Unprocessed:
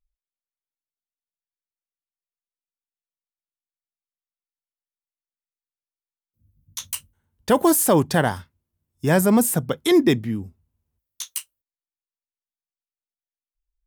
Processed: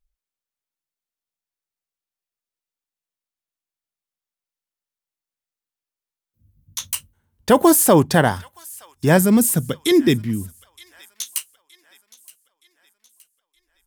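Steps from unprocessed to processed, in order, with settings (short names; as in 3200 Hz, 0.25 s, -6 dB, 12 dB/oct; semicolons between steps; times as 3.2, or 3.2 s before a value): 9.17–11.36 bell 820 Hz -11.5 dB 1.5 oct; thin delay 0.92 s, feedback 45%, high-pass 1500 Hz, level -20 dB; gain +4 dB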